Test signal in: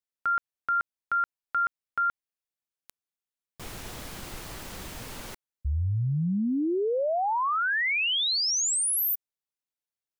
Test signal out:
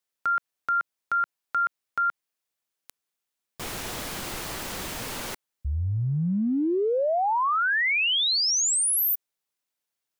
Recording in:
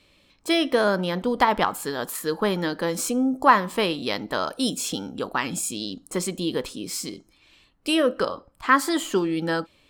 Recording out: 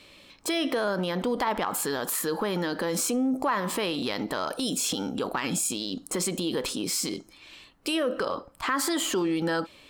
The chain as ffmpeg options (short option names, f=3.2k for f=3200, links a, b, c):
-af "lowshelf=f=150:g=-8.5,acompressor=threshold=-30dB:ratio=5:attack=0.27:release=48:knee=6:detection=rms,volume=8dB"